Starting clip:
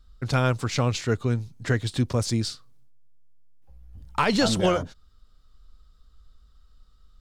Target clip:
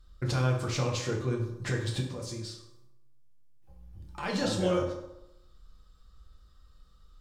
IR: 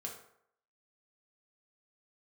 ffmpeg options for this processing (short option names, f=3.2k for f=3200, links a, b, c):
-filter_complex "[0:a]alimiter=limit=-22dB:level=0:latency=1:release=330,asettb=1/sr,asplit=3[a][b][c];[a]atrim=end=2.004[d];[b]atrim=start=2:end=4.23,asetpts=PTS-STARTPTS,afade=t=in:d=0.004:c=qsin,afade=t=out:st=2.226:d=0.004:c=qsin,acompressor=threshold=-43dB:ratio=2[e];[c]atrim=start=4.226[f];[d][e]acrossfade=d=0.004:c1=hsin:c2=qsin[g];[g][f]acrossfade=d=0.004:c1=qsin:c2=hsin[h];[1:a]atrim=start_sample=2205,asetrate=33516,aresample=44100[i];[h][i]afir=irnorm=-1:irlink=0,volume=1.5dB"